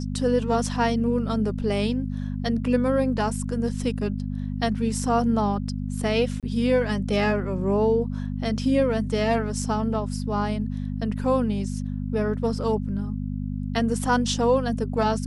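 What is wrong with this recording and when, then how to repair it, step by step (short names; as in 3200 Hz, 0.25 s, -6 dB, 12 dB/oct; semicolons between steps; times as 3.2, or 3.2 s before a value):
hum 50 Hz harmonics 5 -29 dBFS
6.4–6.43 gap 27 ms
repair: de-hum 50 Hz, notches 5; interpolate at 6.4, 27 ms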